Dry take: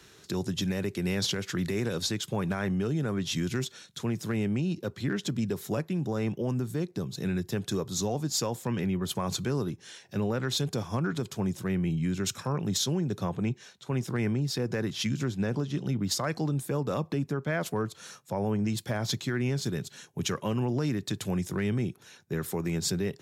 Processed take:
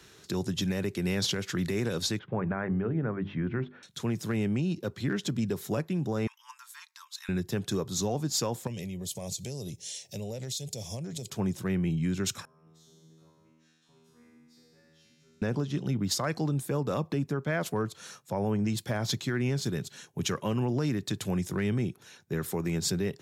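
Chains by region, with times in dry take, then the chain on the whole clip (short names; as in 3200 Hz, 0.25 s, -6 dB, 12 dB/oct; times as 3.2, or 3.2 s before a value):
2.19–3.83 LPF 2000 Hz 24 dB/oct + notches 50/100/150/200/250/300/350/400 Hz
6.27–7.29 Chebyshev high-pass 900 Hz, order 10 + comb 3.7 ms, depth 31%
8.67–11.3 EQ curve 140 Hz 0 dB, 310 Hz -8 dB, 600 Hz +3 dB, 1400 Hz -24 dB, 2000 Hz -3 dB, 7200 Hz +14 dB, 12000 Hz +10 dB + compressor 4:1, threshold -34 dBFS
12.45–15.42 compressor 4:1, threshold -43 dBFS + resonator 80 Hz, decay 1.5 s, mix 100%
whole clip: dry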